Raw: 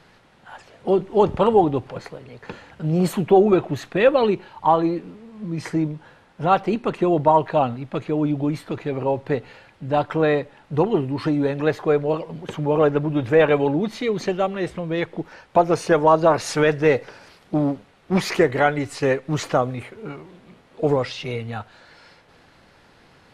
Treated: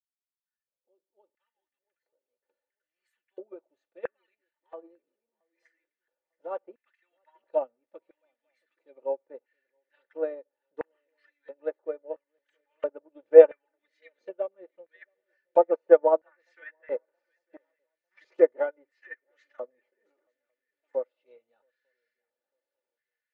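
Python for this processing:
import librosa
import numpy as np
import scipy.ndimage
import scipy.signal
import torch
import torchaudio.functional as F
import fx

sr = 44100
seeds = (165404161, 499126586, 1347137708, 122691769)

p1 = fx.fade_in_head(x, sr, length_s=7.09)
p2 = fx.notch(p1, sr, hz=1100.0, q=11.0)
p3 = p2 + 0.79 * np.pad(p2, (int(3.4 * sr / 1000.0), 0))[:len(p2)]
p4 = fx.filter_lfo_highpass(p3, sr, shape='square', hz=0.74, low_hz=470.0, high_hz=1800.0, q=5.9)
p5 = p4 + fx.echo_swing(p4, sr, ms=899, ratio=3, feedback_pct=31, wet_db=-21.0, dry=0)
p6 = fx.env_lowpass_down(p5, sr, base_hz=1600.0, full_db=-12.5)
p7 = fx.upward_expand(p6, sr, threshold_db=-24.0, expansion=2.5)
y = p7 * 10.0 ** (-6.5 / 20.0)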